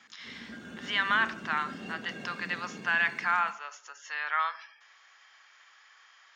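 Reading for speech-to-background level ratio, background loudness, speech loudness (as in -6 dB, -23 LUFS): 14.0 dB, -44.0 LUFS, -30.0 LUFS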